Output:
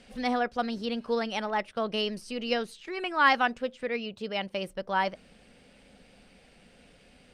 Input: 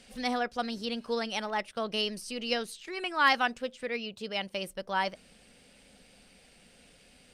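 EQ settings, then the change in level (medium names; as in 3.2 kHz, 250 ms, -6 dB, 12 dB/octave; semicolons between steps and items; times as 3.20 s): treble shelf 3.4 kHz -8.5 dB; treble shelf 8.3 kHz -5 dB; +3.5 dB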